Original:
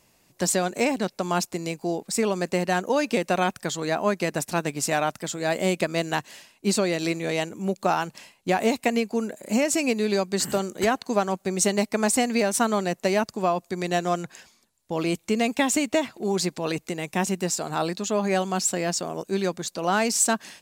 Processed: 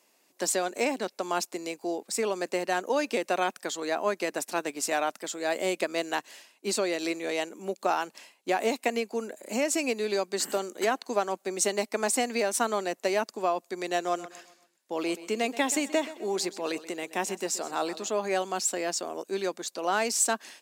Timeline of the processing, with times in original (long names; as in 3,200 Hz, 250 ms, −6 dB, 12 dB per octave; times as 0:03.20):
0:14.01–0:18.09: repeating echo 128 ms, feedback 41%, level −16 dB
whole clip: high-pass filter 270 Hz 24 dB per octave; level −3.5 dB